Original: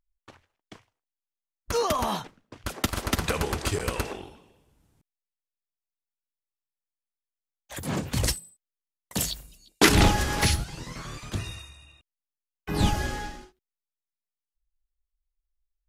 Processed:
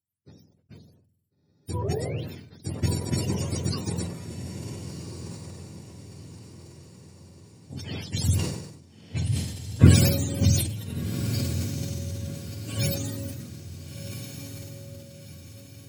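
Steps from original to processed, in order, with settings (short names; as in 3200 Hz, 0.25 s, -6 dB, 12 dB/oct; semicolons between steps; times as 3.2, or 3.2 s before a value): spectrum mirrored in octaves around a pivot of 680 Hz; bell 1200 Hz -14 dB 1.7 oct; on a send: diffused feedback echo 1.416 s, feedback 43%, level -7.5 dB; on the sum: sustainer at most 62 dB/s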